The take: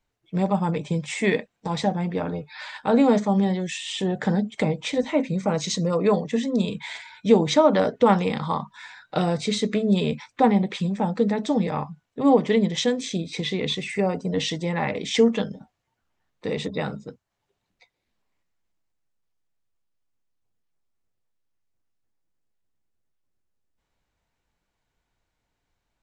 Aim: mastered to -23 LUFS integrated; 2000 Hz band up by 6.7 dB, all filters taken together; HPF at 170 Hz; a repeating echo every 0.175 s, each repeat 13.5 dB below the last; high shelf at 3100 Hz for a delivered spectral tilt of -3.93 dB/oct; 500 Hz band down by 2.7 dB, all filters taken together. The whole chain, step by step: HPF 170 Hz; bell 500 Hz -3.5 dB; bell 2000 Hz +5.5 dB; high shelf 3100 Hz +7 dB; feedback echo 0.175 s, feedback 21%, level -13.5 dB; gain +0.5 dB

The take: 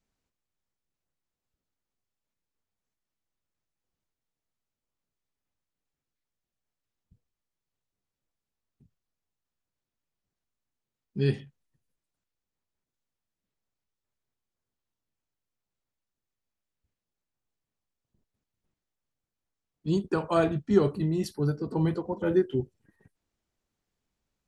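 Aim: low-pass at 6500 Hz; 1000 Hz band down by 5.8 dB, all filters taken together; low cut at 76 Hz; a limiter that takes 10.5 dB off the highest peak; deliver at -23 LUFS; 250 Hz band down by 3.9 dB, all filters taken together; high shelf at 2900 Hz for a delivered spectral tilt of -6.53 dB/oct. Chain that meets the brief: HPF 76 Hz; LPF 6500 Hz; bell 250 Hz -6 dB; bell 1000 Hz -9 dB; high shelf 2900 Hz +8 dB; gain +11 dB; limiter -11.5 dBFS

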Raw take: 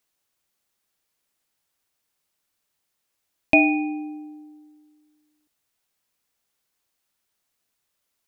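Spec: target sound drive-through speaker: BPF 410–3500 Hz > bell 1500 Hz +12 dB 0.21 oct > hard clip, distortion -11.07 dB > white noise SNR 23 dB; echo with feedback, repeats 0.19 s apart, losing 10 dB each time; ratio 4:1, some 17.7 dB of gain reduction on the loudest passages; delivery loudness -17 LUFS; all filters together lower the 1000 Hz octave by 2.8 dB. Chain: bell 1000 Hz -4 dB; compressor 4:1, threshold -34 dBFS; BPF 410–3500 Hz; bell 1500 Hz +12 dB 0.21 oct; feedback echo 0.19 s, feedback 32%, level -10 dB; hard clip -30.5 dBFS; white noise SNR 23 dB; gain +24.5 dB

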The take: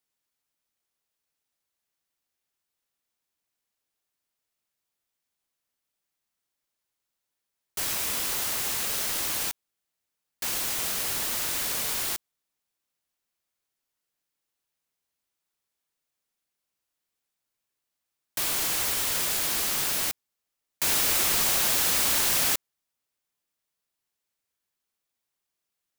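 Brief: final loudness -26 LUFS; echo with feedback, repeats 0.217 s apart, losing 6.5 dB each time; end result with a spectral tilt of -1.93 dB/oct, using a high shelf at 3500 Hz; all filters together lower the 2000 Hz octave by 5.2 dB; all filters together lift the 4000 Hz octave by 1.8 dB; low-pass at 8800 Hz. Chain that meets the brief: LPF 8800 Hz; bell 2000 Hz -7.5 dB; high shelf 3500 Hz -6.5 dB; bell 4000 Hz +9 dB; feedback echo 0.217 s, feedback 47%, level -6.5 dB; gain +3 dB

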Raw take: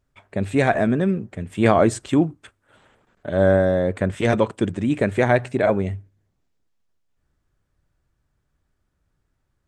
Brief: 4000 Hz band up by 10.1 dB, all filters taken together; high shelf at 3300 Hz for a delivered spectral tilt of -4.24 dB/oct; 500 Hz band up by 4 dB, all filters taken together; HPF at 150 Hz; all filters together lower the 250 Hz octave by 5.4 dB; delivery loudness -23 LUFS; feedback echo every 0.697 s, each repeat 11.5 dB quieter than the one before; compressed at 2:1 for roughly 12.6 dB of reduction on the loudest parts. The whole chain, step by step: HPF 150 Hz; bell 250 Hz -9 dB; bell 500 Hz +6.5 dB; high shelf 3300 Hz +9 dB; bell 4000 Hz +6.5 dB; compressor 2:1, threshold -33 dBFS; feedback echo 0.697 s, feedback 27%, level -11.5 dB; gain +7 dB

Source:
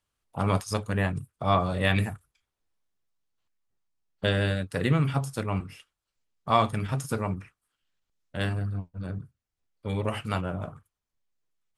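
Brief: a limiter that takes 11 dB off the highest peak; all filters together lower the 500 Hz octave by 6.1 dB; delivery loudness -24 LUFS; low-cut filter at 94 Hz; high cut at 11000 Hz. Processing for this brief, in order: HPF 94 Hz; LPF 11000 Hz; bell 500 Hz -8 dB; gain +10 dB; limiter -10 dBFS

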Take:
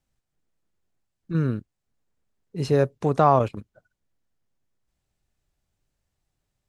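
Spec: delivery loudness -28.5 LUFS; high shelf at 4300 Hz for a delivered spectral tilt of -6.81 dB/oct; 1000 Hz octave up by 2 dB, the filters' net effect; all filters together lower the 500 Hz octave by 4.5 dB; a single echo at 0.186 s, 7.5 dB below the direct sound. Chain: bell 500 Hz -7.5 dB; bell 1000 Hz +5 dB; high shelf 4300 Hz +3 dB; echo 0.186 s -7.5 dB; gain -5 dB

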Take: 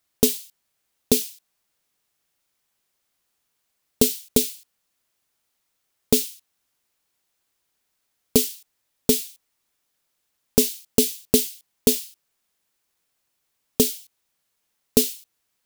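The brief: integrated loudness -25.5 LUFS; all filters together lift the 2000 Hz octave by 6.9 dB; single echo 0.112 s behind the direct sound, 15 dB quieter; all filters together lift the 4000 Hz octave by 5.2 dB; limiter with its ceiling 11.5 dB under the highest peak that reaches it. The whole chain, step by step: bell 2000 Hz +7.5 dB; bell 4000 Hz +4.5 dB; limiter -11 dBFS; echo 0.112 s -15 dB; gain +1 dB

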